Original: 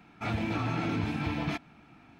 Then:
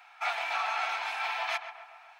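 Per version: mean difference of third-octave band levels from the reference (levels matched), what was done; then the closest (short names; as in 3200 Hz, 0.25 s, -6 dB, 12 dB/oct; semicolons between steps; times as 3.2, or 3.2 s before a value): 15.0 dB: elliptic high-pass 730 Hz, stop band 80 dB; on a send: darkening echo 0.133 s, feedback 61%, low-pass 2100 Hz, level -9.5 dB; on the sum: gain +6 dB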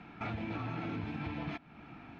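5.0 dB: LPF 3500 Hz 12 dB/oct; compressor 3:1, threshold -45 dBFS, peak gain reduction 14 dB; gain +5 dB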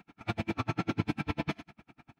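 8.0 dB: on a send: feedback echo 66 ms, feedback 42%, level -15 dB; on the sum: dB-linear tremolo 10 Hz, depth 40 dB; gain +4.5 dB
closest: second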